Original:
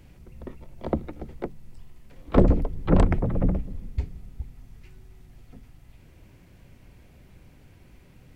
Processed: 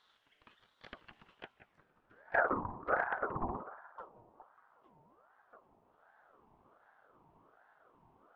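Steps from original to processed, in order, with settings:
soft clipping −13.5 dBFS, distortion −13 dB
bucket-brigade delay 178 ms, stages 2,048, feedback 33%, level −13 dB
band-pass filter sweep 2,500 Hz → 430 Hz, 0:01.21–0:02.42
ring modulator whose carrier an LFO sweeps 860 Hz, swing 40%, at 1.3 Hz
level +1.5 dB

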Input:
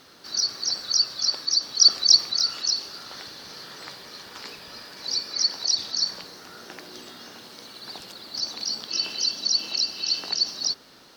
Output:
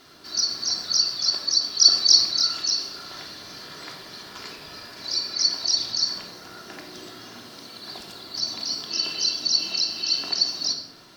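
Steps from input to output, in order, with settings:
rectangular room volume 2,300 cubic metres, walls furnished, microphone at 3.1 metres
level −1.5 dB

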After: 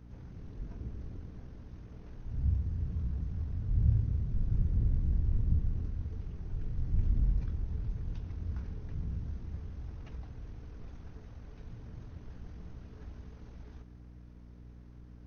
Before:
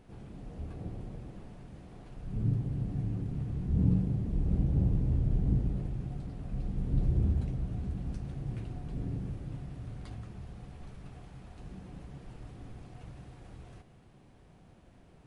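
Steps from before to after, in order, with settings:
pitch shifter −9 semitones
mains hum 60 Hz, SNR 18 dB

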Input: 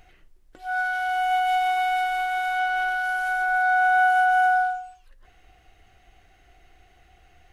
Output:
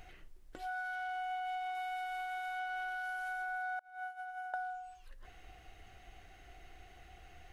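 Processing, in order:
0:00.95–0:01.75: high-shelf EQ 8,100 Hz −10.5 dB
0:03.79–0:04.54: noise gate −15 dBFS, range −34 dB
downward compressor 4 to 1, threshold −41 dBFS, peak gain reduction 19 dB

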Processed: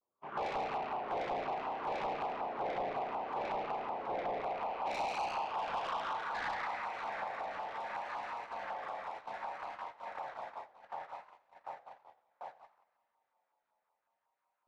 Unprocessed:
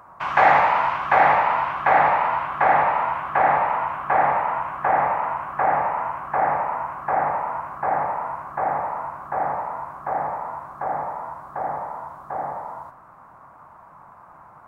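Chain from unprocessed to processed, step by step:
0:05.34–0:05.76: parametric band 770 Hz −8 dB 1.6 octaves
spring reverb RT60 2.2 s, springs 34 ms, chirp 65 ms, DRR −2 dB
band-pass filter sweep 390 Hz → 3,600 Hz, 0:04.25–0:07.51
soft clipping −25 dBFS, distortion −8 dB
feedback echo with a long and a short gap by turns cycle 1,097 ms, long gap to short 1.5 to 1, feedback 74%, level −14.5 dB
pitch vibrato 0.64 Hz 81 cents
auto-filter notch saw down 5.4 Hz 610–2,100 Hz
noise gate −43 dBFS, range −33 dB
downward compressor 2 to 1, threshold −44 dBFS, peak gain reduction 10 dB
feedback echo with a swinging delay time 89 ms, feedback 53%, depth 185 cents, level −18.5 dB
level +3 dB

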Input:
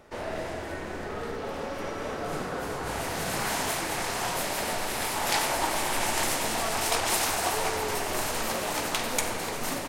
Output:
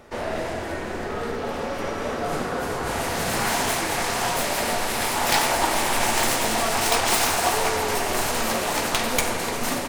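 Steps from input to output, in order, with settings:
stylus tracing distortion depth 0.089 ms
on a send: convolution reverb RT60 0.35 s, pre-delay 4 ms, DRR 12 dB
on the sum: level +5.5 dB

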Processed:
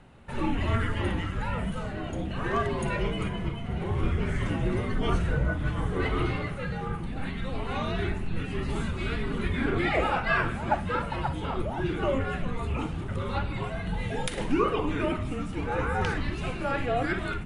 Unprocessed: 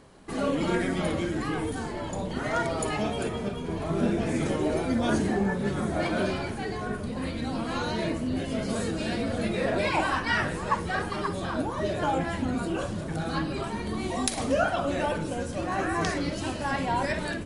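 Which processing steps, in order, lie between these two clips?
high shelf with overshoot 4,000 Hz −8.5 dB, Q 1.5
frequency shifter −260 Hz

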